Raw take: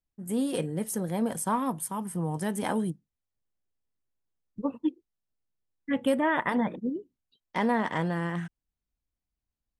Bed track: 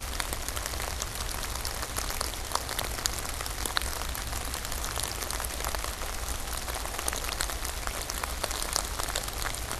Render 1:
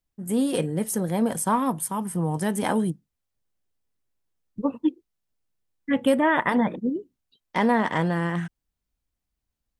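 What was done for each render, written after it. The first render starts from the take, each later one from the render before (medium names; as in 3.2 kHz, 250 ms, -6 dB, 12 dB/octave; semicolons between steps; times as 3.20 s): trim +5 dB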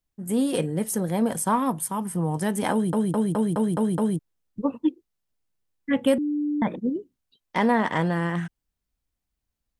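2.72 s: stutter in place 0.21 s, 7 plays; 6.18–6.62 s: bleep 295 Hz -22.5 dBFS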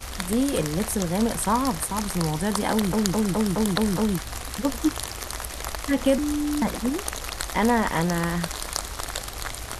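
add bed track 0 dB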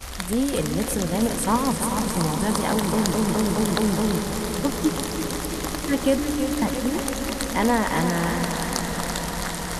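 echo with a slow build-up 99 ms, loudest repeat 8, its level -17 dB; modulated delay 335 ms, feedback 63%, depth 59 cents, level -9 dB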